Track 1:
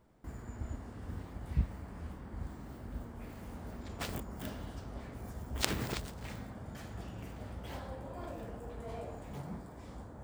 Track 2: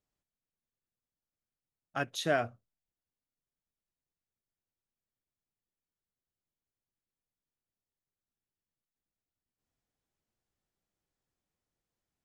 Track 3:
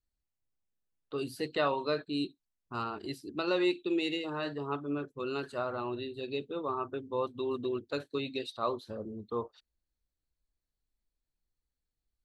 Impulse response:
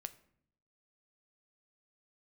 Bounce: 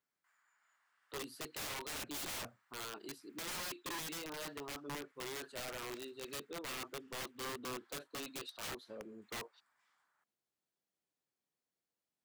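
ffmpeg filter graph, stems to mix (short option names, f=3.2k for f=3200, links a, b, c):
-filter_complex "[0:a]highpass=f=1.4k:w=0.5412,highpass=f=1.4k:w=1.3066,highshelf=f=2.3k:g=-11,volume=-13dB,asplit=2[a][b];[b]volume=-3dB[c];[1:a]volume=-4.5dB[d];[2:a]lowshelf=f=190:g=-8.5,volume=-6.5dB,asplit=2[e][f];[f]apad=whole_len=451558[g];[a][g]sidechaincompress=threshold=-41dB:ratio=8:attack=16:release=371[h];[3:a]atrim=start_sample=2205[i];[c][i]afir=irnorm=-1:irlink=0[j];[h][d][e][j]amix=inputs=4:normalize=0,highpass=180,aeval=exprs='(mod(75*val(0)+1,2)-1)/75':c=same"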